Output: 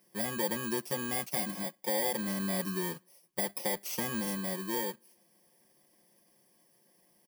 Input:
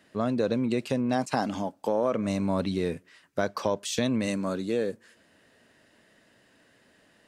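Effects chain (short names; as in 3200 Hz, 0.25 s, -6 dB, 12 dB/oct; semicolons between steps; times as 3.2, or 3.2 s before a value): FFT order left unsorted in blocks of 32 samples; low shelf 170 Hz -6.5 dB; comb 5.6 ms, depth 88%; gain -7.5 dB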